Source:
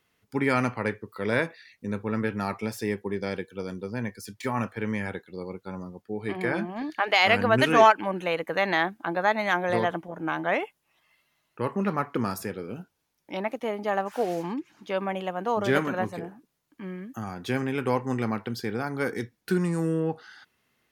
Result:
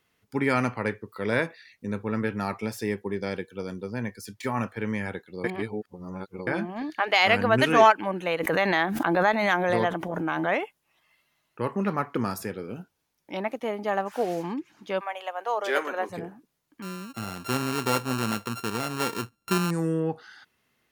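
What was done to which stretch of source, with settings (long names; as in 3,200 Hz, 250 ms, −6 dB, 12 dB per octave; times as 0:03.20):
0:05.44–0:06.47: reverse
0:08.40–0:10.49: background raised ahead of every attack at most 24 dB per second
0:14.99–0:16.09: high-pass filter 700 Hz → 330 Hz 24 dB per octave
0:16.82–0:19.71: samples sorted by size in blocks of 32 samples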